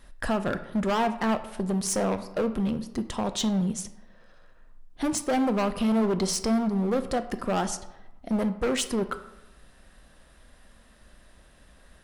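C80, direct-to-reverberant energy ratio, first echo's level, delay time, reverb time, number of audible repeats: 15.5 dB, 9.5 dB, no echo audible, no echo audible, 0.95 s, no echo audible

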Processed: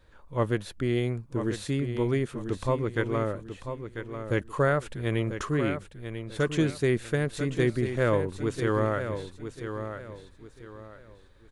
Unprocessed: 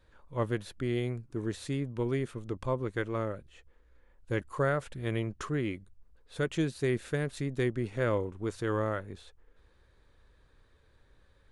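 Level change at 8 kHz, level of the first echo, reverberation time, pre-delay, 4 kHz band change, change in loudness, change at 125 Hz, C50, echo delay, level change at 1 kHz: +5.0 dB, −9.0 dB, no reverb audible, no reverb audible, +5.0 dB, +4.0 dB, +5.0 dB, no reverb audible, 993 ms, +5.0 dB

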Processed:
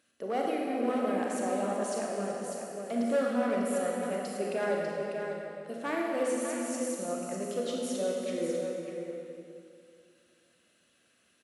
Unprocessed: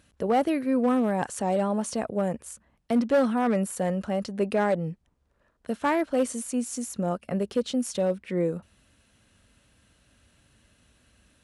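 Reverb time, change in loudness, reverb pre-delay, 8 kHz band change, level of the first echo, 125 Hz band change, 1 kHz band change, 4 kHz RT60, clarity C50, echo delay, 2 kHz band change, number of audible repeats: 2.3 s, −5.5 dB, 26 ms, −3.0 dB, −12.5 dB, −12.0 dB, −5.5 dB, 2.0 s, −2.0 dB, 378 ms, −2.5 dB, 2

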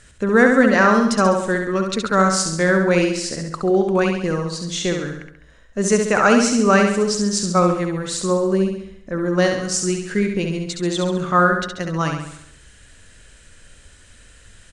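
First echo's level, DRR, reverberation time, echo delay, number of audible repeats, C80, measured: −5.0 dB, no reverb audible, no reverb audible, 68 ms, 6, no reverb audible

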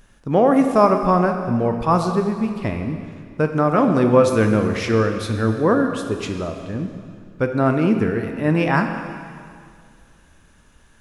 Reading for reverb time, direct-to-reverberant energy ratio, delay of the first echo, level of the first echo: 2.2 s, 5.0 dB, no echo audible, no echo audible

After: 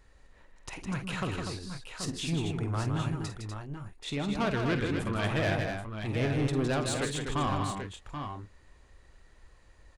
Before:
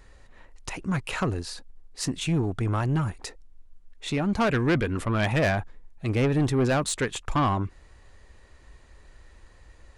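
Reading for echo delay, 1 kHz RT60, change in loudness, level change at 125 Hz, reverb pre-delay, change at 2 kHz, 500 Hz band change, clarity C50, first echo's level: 49 ms, no reverb audible, −6.0 dB, −5.0 dB, no reverb audible, −4.5 dB, −5.0 dB, no reverb audible, −10.0 dB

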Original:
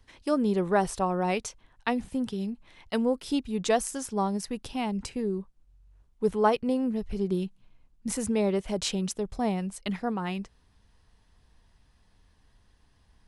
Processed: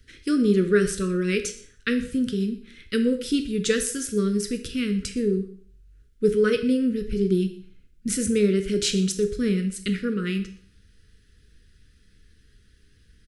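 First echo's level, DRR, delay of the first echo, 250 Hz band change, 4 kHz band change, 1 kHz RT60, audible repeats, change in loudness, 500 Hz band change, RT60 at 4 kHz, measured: −20.0 dB, 7.0 dB, 121 ms, +6.0 dB, +6.5 dB, 0.50 s, 1, +5.0 dB, +5.0 dB, 0.50 s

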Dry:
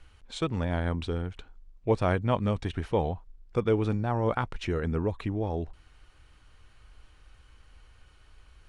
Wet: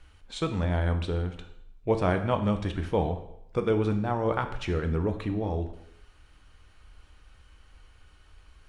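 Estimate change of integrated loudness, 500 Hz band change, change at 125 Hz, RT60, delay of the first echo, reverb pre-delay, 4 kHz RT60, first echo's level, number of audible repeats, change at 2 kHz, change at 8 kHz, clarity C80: +1.0 dB, +1.0 dB, +1.0 dB, 0.75 s, no echo audible, 4 ms, 0.70 s, no echo audible, no echo audible, +1.0 dB, can't be measured, 13.0 dB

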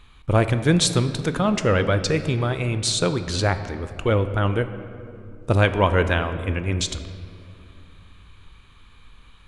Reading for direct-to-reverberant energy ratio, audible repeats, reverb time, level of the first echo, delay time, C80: 9.5 dB, no echo audible, 2.5 s, no echo audible, no echo audible, 11.5 dB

